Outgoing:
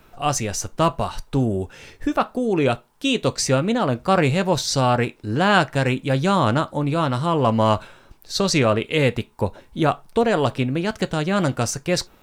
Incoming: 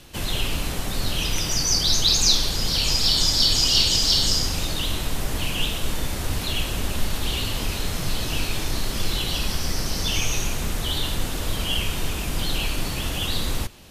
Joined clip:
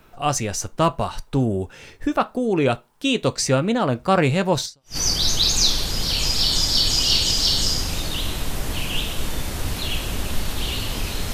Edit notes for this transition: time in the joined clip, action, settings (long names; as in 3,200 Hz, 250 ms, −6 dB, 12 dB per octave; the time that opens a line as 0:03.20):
outgoing
0:04.81: continue with incoming from 0:01.46, crossfade 0.32 s exponential